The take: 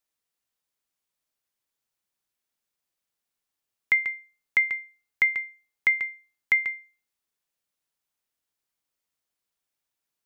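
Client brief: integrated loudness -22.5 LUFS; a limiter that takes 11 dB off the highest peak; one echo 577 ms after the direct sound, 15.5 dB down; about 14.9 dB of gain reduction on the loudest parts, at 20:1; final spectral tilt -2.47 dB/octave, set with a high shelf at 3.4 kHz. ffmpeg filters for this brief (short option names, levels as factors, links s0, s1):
-af "highshelf=f=3400:g=4,acompressor=threshold=0.0316:ratio=20,alimiter=limit=0.075:level=0:latency=1,aecho=1:1:577:0.168,volume=7.08"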